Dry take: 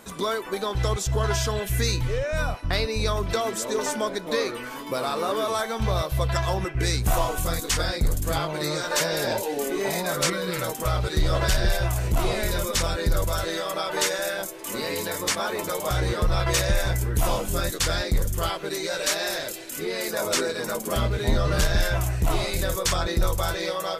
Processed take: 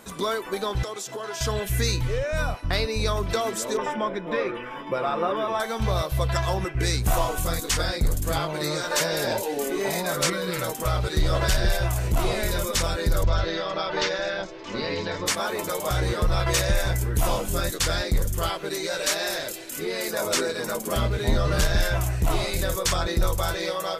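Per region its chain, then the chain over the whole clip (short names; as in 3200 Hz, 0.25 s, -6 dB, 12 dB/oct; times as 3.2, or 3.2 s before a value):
0.83–1.41 HPF 240 Hz 24 dB/oct + compressor 4:1, threshold -30 dBFS
3.77–5.6 polynomial smoothing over 25 samples + comb 5.7 ms, depth 48%
13.23–15.26 steep low-pass 5400 Hz + low shelf 130 Hz +8 dB
whole clip: dry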